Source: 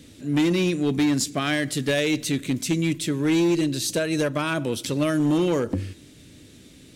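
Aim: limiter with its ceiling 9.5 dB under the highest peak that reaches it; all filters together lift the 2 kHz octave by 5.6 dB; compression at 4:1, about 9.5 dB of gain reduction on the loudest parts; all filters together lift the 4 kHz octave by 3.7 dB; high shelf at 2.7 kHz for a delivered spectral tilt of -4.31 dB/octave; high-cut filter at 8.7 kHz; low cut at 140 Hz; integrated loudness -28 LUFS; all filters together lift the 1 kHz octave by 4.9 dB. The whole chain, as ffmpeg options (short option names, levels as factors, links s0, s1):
-af "highpass=140,lowpass=8700,equalizer=f=1000:t=o:g=5,equalizer=f=2000:t=o:g=6,highshelf=f=2700:g=-4.5,equalizer=f=4000:t=o:g=6,acompressor=threshold=0.0398:ratio=4,volume=1.88,alimiter=limit=0.119:level=0:latency=1"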